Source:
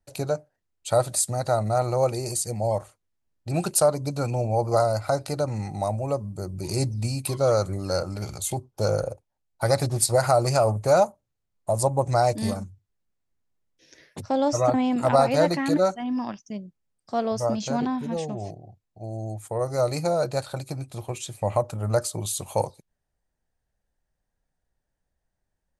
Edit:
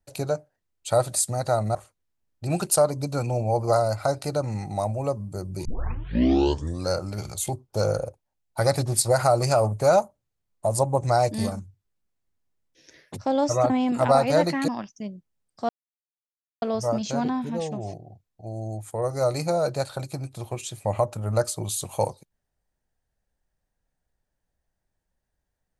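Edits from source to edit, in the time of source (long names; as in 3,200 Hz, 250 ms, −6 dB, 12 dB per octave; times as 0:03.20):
0:01.75–0:02.79: remove
0:06.69: tape start 1.23 s
0:15.72–0:16.18: remove
0:17.19: splice in silence 0.93 s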